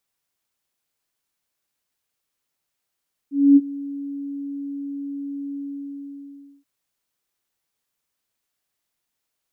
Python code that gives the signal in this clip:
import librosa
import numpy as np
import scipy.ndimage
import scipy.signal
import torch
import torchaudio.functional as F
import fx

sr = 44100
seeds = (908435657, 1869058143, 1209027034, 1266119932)

y = fx.adsr_tone(sr, wave='sine', hz=281.0, attack_ms=253.0, decay_ms=39.0, sustain_db=-20.5, held_s=2.24, release_ms=1090.0, level_db=-7.0)